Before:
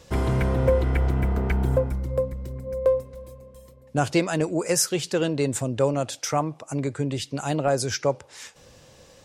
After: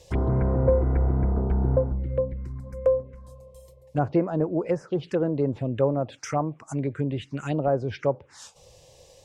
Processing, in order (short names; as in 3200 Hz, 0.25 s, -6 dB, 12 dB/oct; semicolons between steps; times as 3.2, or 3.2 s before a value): envelope phaser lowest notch 220 Hz, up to 3600 Hz, full sweep at -18.5 dBFS; treble ducked by the level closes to 1100 Hz, closed at -21 dBFS